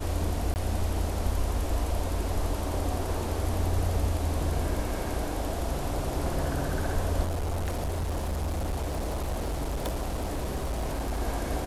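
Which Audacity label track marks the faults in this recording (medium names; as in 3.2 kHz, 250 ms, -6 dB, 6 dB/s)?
0.540000	0.560000	dropout 19 ms
7.240000	11.210000	clipped -26.5 dBFS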